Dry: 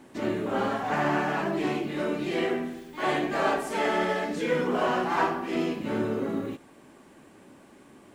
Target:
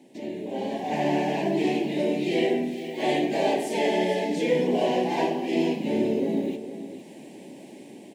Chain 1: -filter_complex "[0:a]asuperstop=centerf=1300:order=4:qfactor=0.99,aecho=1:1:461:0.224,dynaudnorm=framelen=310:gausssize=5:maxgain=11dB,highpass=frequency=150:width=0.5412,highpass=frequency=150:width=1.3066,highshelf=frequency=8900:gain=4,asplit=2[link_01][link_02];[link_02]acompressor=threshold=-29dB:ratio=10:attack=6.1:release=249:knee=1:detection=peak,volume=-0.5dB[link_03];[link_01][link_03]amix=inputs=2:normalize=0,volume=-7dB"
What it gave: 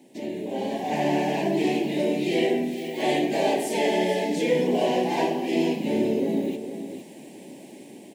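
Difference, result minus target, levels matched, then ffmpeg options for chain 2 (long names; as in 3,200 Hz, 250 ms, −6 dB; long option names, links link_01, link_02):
downward compressor: peak gain reduction −7.5 dB; 8,000 Hz band +3.5 dB
-filter_complex "[0:a]asuperstop=centerf=1300:order=4:qfactor=0.99,aecho=1:1:461:0.224,dynaudnorm=framelen=310:gausssize=5:maxgain=11dB,highpass=frequency=150:width=0.5412,highpass=frequency=150:width=1.3066,highshelf=frequency=8900:gain=-4.5,asplit=2[link_01][link_02];[link_02]acompressor=threshold=-37.5dB:ratio=10:attack=6.1:release=249:knee=1:detection=peak,volume=-0.5dB[link_03];[link_01][link_03]amix=inputs=2:normalize=0,volume=-7dB"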